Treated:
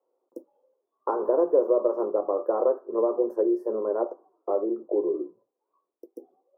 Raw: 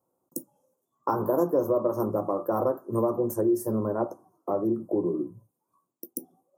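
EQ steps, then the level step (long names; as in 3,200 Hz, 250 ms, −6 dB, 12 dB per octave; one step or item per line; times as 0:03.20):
four-pole ladder high-pass 380 Hz, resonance 55%
high-frequency loss of the air 360 metres
+8.0 dB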